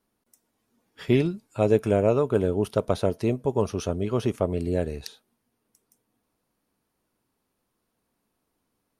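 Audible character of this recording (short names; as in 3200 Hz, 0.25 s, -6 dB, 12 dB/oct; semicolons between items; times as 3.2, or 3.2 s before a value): noise floor -78 dBFS; spectral tilt -7.0 dB/oct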